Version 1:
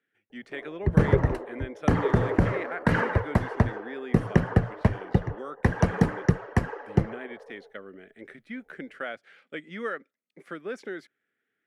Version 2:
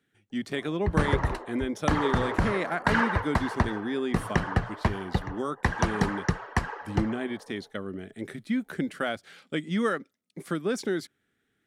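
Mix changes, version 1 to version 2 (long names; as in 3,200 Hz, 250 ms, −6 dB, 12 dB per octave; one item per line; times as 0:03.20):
speech: remove resonant band-pass 1,900 Hz, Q 0.98
master: add octave-band graphic EQ 125/250/500/1,000/4,000/8,000 Hz −6/−4/−7/+5/+7/+4 dB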